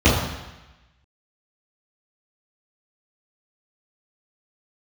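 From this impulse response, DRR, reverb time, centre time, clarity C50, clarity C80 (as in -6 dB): -13.5 dB, 1.0 s, 60 ms, 2.0 dB, 5.0 dB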